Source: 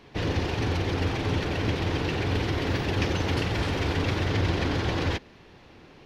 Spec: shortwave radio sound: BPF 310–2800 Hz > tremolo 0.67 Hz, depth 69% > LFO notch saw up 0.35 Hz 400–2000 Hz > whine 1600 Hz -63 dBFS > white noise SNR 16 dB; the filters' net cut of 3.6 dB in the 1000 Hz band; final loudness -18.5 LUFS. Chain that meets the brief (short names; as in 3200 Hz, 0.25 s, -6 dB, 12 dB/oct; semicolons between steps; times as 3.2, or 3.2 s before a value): BPF 310–2800 Hz; bell 1000 Hz -4.5 dB; tremolo 0.67 Hz, depth 69%; LFO notch saw up 0.35 Hz 400–2000 Hz; whine 1600 Hz -63 dBFS; white noise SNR 16 dB; gain +19.5 dB